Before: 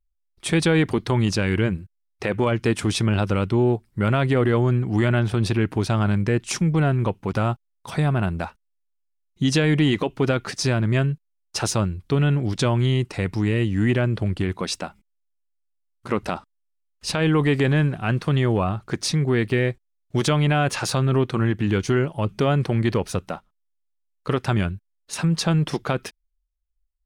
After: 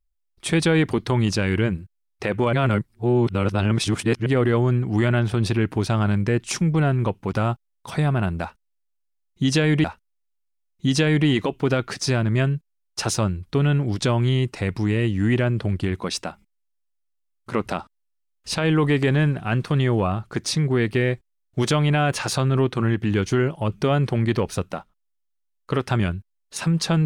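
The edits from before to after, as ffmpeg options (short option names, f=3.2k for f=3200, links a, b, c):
-filter_complex "[0:a]asplit=4[a][b][c][d];[a]atrim=end=2.532[e];[b]atrim=start=2.528:end=4.262,asetpts=PTS-STARTPTS,areverse[f];[c]atrim=start=4.258:end=9.842[g];[d]atrim=start=8.408[h];[e][f]acrossfade=d=0.004:c1=hsin:c2=hsin[i];[i][g]acrossfade=d=0.004:c1=hsin:c2=hsin[j];[j][h]acrossfade=d=0.004:c1=hsin:c2=hsin"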